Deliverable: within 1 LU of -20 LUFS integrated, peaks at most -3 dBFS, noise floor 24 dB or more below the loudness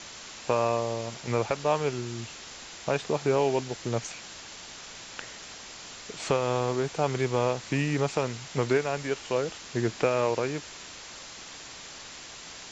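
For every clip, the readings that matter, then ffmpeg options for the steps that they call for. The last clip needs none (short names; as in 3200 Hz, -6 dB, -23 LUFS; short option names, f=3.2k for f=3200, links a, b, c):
noise floor -44 dBFS; noise floor target -53 dBFS; loudness -29.0 LUFS; peak -10.0 dBFS; loudness target -20.0 LUFS
-> -af "afftdn=nr=9:nf=-44"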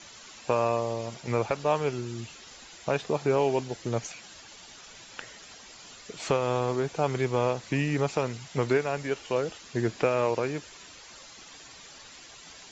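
noise floor -49 dBFS; noise floor target -53 dBFS
-> -af "afftdn=nr=6:nf=-49"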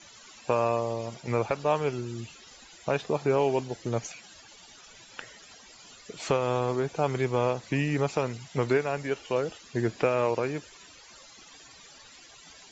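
noise floor -52 dBFS; noise floor target -53 dBFS
-> -af "afftdn=nr=6:nf=-52"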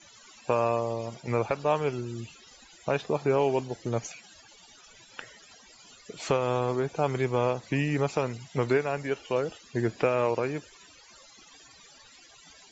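noise floor -55 dBFS; loudness -29.0 LUFS; peak -10.5 dBFS; loudness target -20.0 LUFS
-> -af "volume=9dB,alimiter=limit=-3dB:level=0:latency=1"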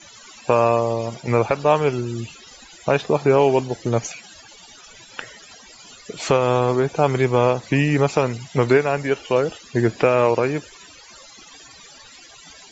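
loudness -20.0 LUFS; peak -3.0 dBFS; noise floor -46 dBFS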